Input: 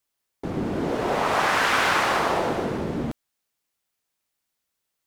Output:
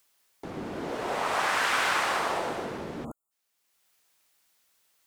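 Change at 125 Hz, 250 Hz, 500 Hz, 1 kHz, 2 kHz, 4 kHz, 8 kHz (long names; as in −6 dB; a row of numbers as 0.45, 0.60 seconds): −12.0, −10.0, −7.5, −5.5, −4.5, −4.0, −2.5 decibels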